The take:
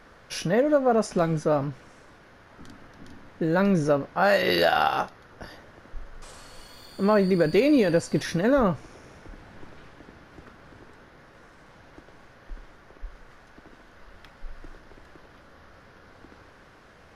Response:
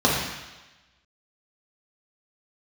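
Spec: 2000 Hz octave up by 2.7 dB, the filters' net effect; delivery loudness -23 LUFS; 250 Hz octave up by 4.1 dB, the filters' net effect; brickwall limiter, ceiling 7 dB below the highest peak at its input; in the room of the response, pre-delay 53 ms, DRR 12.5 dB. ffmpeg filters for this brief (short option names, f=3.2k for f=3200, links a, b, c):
-filter_complex "[0:a]equalizer=f=250:t=o:g=5.5,equalizer=f=2k:t=o:g=3.5,alimiter=limit=-13dB:level=0:latency=1,asplit=2[a][b];[1:a]atrim=start_sample=2205,adelay=53[c];[b][c]afir=irnorm=-1:irlink=0,volume=-31.5dB[d];[a][d]amix=inputs=2:normalize=0,volume=-0.5dB"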